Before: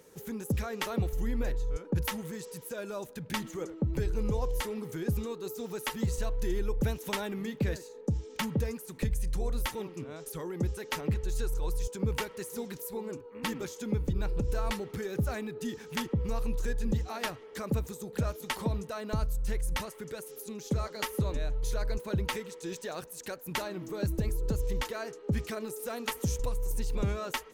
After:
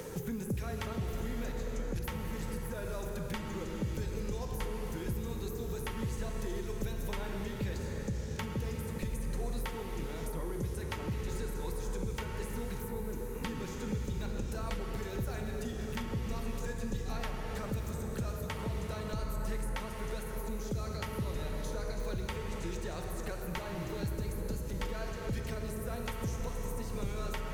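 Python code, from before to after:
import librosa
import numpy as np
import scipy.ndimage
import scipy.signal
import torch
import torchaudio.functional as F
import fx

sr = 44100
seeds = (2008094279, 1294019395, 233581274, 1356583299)

y = fx.rev_plate(x, sr, seeds[0], rt60_s=4.5, hf_ratio=0.5, predelay_ms=0, drr_db=1.0)
y = fx.band_squash(y, sr, depth_pct=100)
y = y * 10.0 ** (-7.5 / 20.0)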